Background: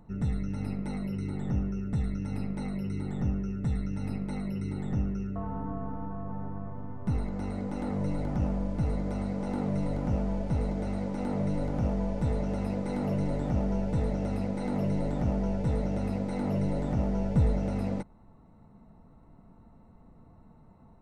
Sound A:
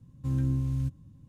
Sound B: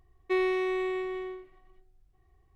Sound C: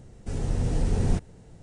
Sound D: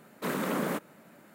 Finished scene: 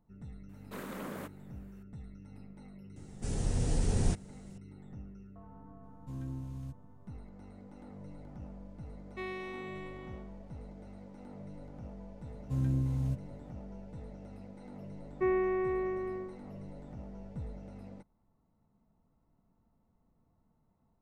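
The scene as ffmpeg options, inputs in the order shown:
ffmpeg -i bed.wav -i cue0.wav -i cue1.wav -i cue2.wav -i cue3.wav -filter_complex "[1:a]asplit=2[link_01][link_02];[2:a]asplit=2[link_03][link_04];[0:a]volume=-17.5dB[link_05];[3:a]highshelf=frequency=4700:gain=10.5[link_06];[link_01]equalizer=frequency=100:width_type=o:width=0.77:gain=-9[link_07];[link_03]highpass=480[link_08];[link_04]lowpass=frequency=1800:width=0.5412,lowpass=frequency=1800:width=1.3066[link_09];[4:a]atrim=end=1.34,asetpts=PTS-STARTPTS,volume=-11.5dB,afade=type=in:duration=0.004:curve=hsin,afade=type=out:start_time=1.336:duration=0.004:curve=hsin,adelay=490[link_10];[link_06]atrim=end=1.62,asetpts=PTS-STARTPTS,volume=-5dB,afade=type=in:duration=0.004:curve=hsin,afade=type=out:start_time=1.616:duration=0.004:curve=hsin,adelay=2960[link_11];[link_07]atrim=end=1.28,asetpts=PTS-STARTPTS,volume=-9.5dB,afade=type=in:duration=0.004:curve=hsin,afade=type=out:start_time=1.276:duration=0.004:curve=hsin,adelay=5830[link_12];[link_08]atrim=end=2.55,asetpts=PTS-STARTPTS,volume=-9.5dB,afade=type=in:duration=0.004:curve=hsin,afade=type=out:start_time=2.546:duration=0.004:curve=hsin,adelay=8870[link_13];[link_02]atrim=end=1.28,asetpts=PTS-STARTPTS,volume=-3dB,afade=type=in:duration=0.004:curve=hsin,afade=type=out:start_time=1.276:duration=0.004:curve=hsin,adelay=12260[link_14];[link_09]atrim=end=2.55,asetpts=PTS-STARTPTS,volume=-2dB,afade=type=in:duration=0.004:curve=hsin,afade=type=out:start_time=2.546:duration=0.004:curve=hsin,adelay=14910[link_15];[link_05][link_10][link_11][link_12][link_13][link_14][link_15]amix=inputs=7:normalize=0" out.wav

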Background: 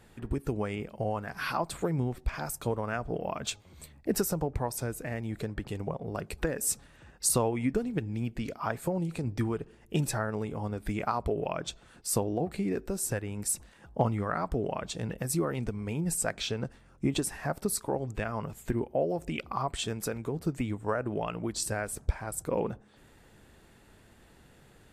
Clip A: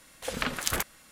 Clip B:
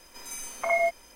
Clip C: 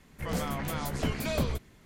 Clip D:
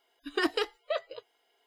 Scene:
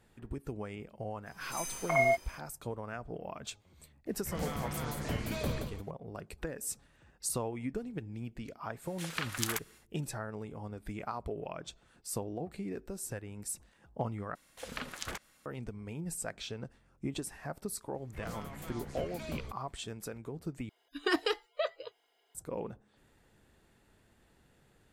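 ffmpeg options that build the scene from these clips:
ffmpeg -i bed.wav -i cue0.wav -i cue1.wav -i cue2.wav -i cue3.wav -filter_complex "[3:a]asplit=2[link_01][link_02];[1:a]asplit=2[link_03][link_04];[0:a]volume=-8.5dB[link_05];[2:a]dynaudnorm=framelen=120:gausssize=3:maxgain=9dB[link_06];[link_01]aecho=1:1:52.48|174.9:0.398|0.447[link_07];[link_03]highpass=890[link_08];[link_04]acrossover=split=7600[link_09][link_10];[link_10]acompressor=threshold=-41dB:ratio=4:attack=1:release=60[link_11];[link_09][link_11]amix=inputs=2:normalize=0[link_12];[link_05]asplit=3[link_13][link_14][link_15];[link_13]atrim=end=14.354[link_16];[link_12]atrim=end=1.11,asetpts=PTS-STARTPTS,volume=-10dB[link_17];[link_14]atrim=start=15.456:end=20.694[link_18];[4:a]atrim=end=1.66,asetpts=PTS-STARTPTS,volume=-1.5dB[link_19];[link_15]atrim=start=22.346[link_20];[link_06]atrim=end=1.15,asetpts=PTS-STARTPTS,volume=-11dB,afade=type=in:duration=0.004:curve=hsin,afade=type=out:start_time=1.146:duration=0.004:curve=hsin,adelay=1260[link_21];[link_07]atrim=end=1.85,asetpts=PTS-STARTPTS,volume=-6.5dB,afade=type=in:duration=0.004:curve=hsin,afade=type=out:start_time=1.846:duration=0.004:curve=hsin,adelay=4060[link_22];[link_08]atrim=end=1.11,asetpts=PTS-STARTPTS,volume=-5dB,afade=type=in:duration=0.1,afade=type=out:start_time=1.01:duration=0.1,adelay=8760[link_23];[link_02]atrim=end=1.85,asetpts=PTS-STARTPTS,volume=-12dB,afade=type=in:duration=0.004:curve=hsin,afade=type=out:start_time=1.846:duration=0.004:curve=hsin,adelay=17940[link_24];[link_16][link_17]acrossfade=duration=0.004:curve1=hsin:curve2=hsin[link_25];[link_25][link_18]acrossfade=duration=0.004:curve1=hsin:curve2=hsin[link_26];[link_26][link_19]acrossfade=duration=0.004:curve1=hsin:curve2=hsin[link_27];[link_27][link_20]acrossfade=duration=0.004:curve1=hsin:curve2=hsin[link_28];[link_28][link_21][link_22][link_23][link_24]amix=inputs=5:normalize=0" out.wav

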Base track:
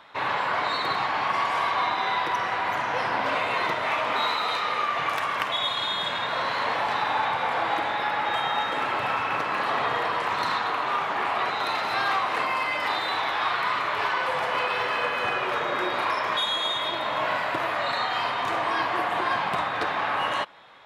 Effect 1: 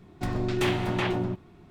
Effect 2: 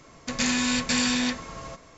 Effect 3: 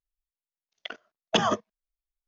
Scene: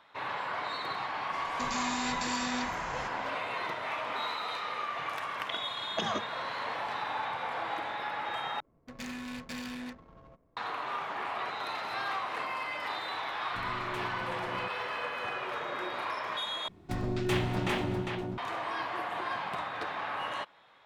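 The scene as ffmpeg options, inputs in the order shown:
ffmpeg -i bed.wav -i cue0.wav -i cue1.wav -i cue2.wav -filter_complex "[2:a]asplit=2[link_01][link_02];[1:a]asplit=2[link_03][link_04];[0:a]volume=-9.5dB[link_05];[link_01]alimiter=limit=-23dB:level=0:latency=1:release=24[link_06];[3:a]acompressor=threshold=-27dB:ratio=6:attack=3.2:release=140:knee=1:detection=peak[link_07];[link_02]adynamicsmooth=sensitivity=3:basefreq=600[link_08];[link_04]aecho=1:1:402:0.596[link_09];[link_05]asplit=3[link_10][link_11][link_12];[link_10]atrim=end=8.604[link_13];[link_08]atrim=end=1.97,asetpts=PTS-STARTPTS,volume=-14dB[link_14];[link_11]atrim=start=10.566:end=16.684[link_15];[link_09]atrim=end=1.7,asetpts=PTS-STARTPTS,volume=-4dB[link_16];[link_12]atrim=start=18.376[link_17];[link_06]atrim=end=1.97,asetpts=PTS-STARTPTS,volume=-3.5dB,afade=type=in:duration=0.004:curve=hsin,afade=type=out:start_time=1.966:duration=0.004:curve=hsin,adelay=1320[link_18];[link_07]atrim=end=2.27,asetpts=PTS-STARTPTS,volume=-1.5dB,afade=type=in:duration=0.004:curve=hsin,afade=type=out:start_time=2.266:duration=0.004:curve=hsin,adelay=4640[link_19];[link_03]atrim=end=1.7,asetpts=PTS-STARTPTS,volume=-15.5dB,afade=type=in:duration=0.004:curve=hsin,afade=type=out:start_time=1.696:duration=0.004:curve=hsin,adelay=13330[link_20];[link_13][link_14]acrossfade=duration=0.004:curve1=hsin:curve2=hsin[link_21];[link_21][link_15]acrossfade=duration=0.004:curve1=hsin:curve2=hsin[link_22];[link_22][link_16]acrossfade=duration=0.004:curve1=hsin:curve2=hsin[link_23];[link_23][link_17]acrossfade=duration=0.004:curve1=hsin:curve2=hsin[link_24];[link_24][link_18][link_19][link_20]amix=inputs=4:normalize=0" out.wav

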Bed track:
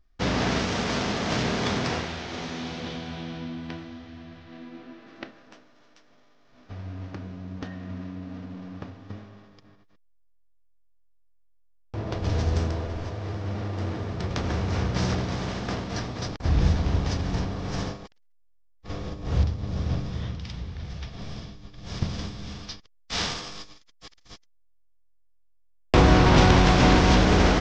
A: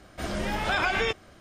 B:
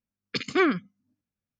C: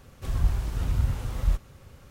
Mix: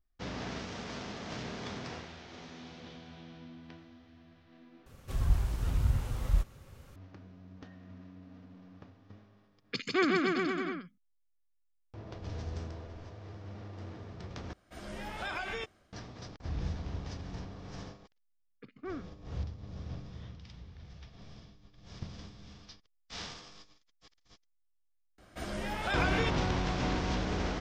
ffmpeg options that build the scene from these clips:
ffmpeg -i bed.wav -i cue0.wav -i cue1.wav -i cue2.wav -filter_complex "[2:a]asplit=2[link_01][link_02];[1:a]asplit=2[link_03][link_04];[0:a]volume=-14.5dB[link_05];[link_01]aecho=1:1:150|285|406.5|515.8|614.3|702.8:0.794|0.631|0.501|0.398|0.316|0.251[link_06];[link_03]dynaudnorm=framelen=110:gausssize=5:maxgain=4dB[link_07];[link_02]lowpass=1200[link_08];[link_05]asplit=3[link_09][link_10][link_11];[link_09]atrim=end=4.864[link_12];[3:a]atrim=end=2.1,asetpts=PTS-STARTPTS,volume=-3.5dB[link_13];[link_10]atrim=start=6.956:end=14.534[link_14];[link_07]atrim=end=1.4,asetpts=PTS-STARTPTS,volume=-16dB[link_15];[link_11]atrim=start=15.926[link_16];[link_06]atrim=end=1.59,asetpts=PTS-STARTPTS,volume=-6.5dB,afade=type=in:duration=0.004:curve=hsin,afade=type=out:start_time=1.586:duration=0.004:curve=hsin,adelay=9390[link_17];[link_08]atrim=end=1.59,asetpts=PTS-STARTPTS,volume=-18dB,afade=type=in:duration=0.004:curve=hsin,afade=type=out:start_time=1.586:duration=0.004:curve=hsin,adelay=806148S[link_18];[link_04]atrim=end=1.4,asetpts=PTS-STARTPTS,volume=-7dB,afade=type=in:duration=0.004:curve=hsin,afade=type=out:start_time=1.396:duration=0.004:curve=hsin,adelay=25180[link_19];[link_12][link_13]acrossfade=duration=0.004:curve1=hsin:curve2=hsin[link_20];[link_20][link_14]acrossfade=duration=0.004:curve1=hsin:curve2=hsin[link_21];[link_21][link_15]acrossfade=duration=0.004:curve1=hsin:curve2=hsin[link_22];[link_22][link_16]acrossfade=duration=0.004:curve1=hsin:curve2=hsin[link_23];[link_23][link_17][link_18][link_19]amix=inputs=4:normalize=0" out.wav

